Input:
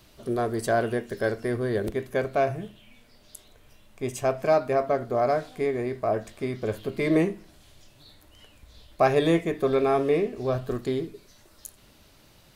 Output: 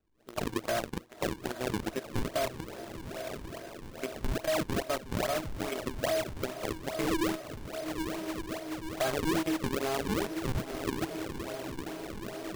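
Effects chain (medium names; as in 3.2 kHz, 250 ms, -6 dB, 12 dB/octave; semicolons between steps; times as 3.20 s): hum notches 60/120/180/240/300/360/420/480 Hz; feedback comb 320 Hz, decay 0.35 s, harmonics all, mix 90%; in parallel at -9 dB: fuzz box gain 47 dB, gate -40 dBFS; on the sum: spectral noise reduction 10 dB; on a send: echo that smears into a reverb 975 ms, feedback 71%, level -15.5 dB; on the sum: peak limiter -22 dBFS, peak gain reduction 7.5 dB; decimation with a swept rate 39×, swing 160% 2.4 Hz; compression 2.5:1, threshold -33 dBFS, peak gain reduction 6 dB; trim +3.5 dB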